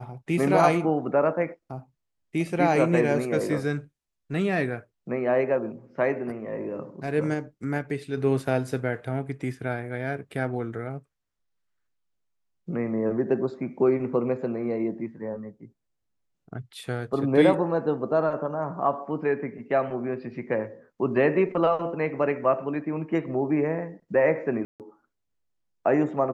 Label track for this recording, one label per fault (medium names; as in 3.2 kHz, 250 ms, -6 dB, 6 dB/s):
24.650000	24.800000	dropout 148 ms